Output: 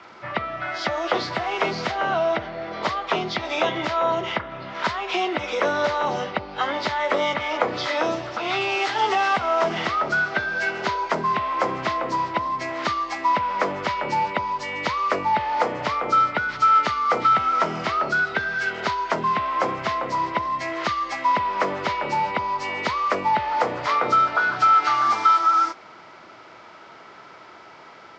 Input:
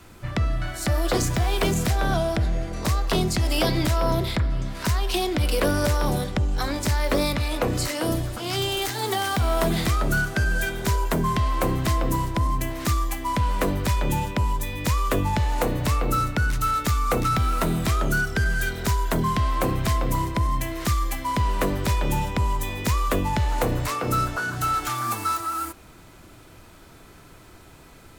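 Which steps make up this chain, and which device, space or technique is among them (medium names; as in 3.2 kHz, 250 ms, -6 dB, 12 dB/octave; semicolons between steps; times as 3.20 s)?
hearing aid with frequency lowering (knee-point frequency compression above 1.9 kHz 1.5:1; compression 3:1, threshold -23 dBFS, peak gain reduction 4.5 dB; cabinet simulation 280–5000 Hz, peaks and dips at 280 Hz -5 dB, 620 Hz +4 dB, 890 Hz +7 dB, 1.3 kHz +7 dB, 2.1 kHz +6 dB); trim +3 dB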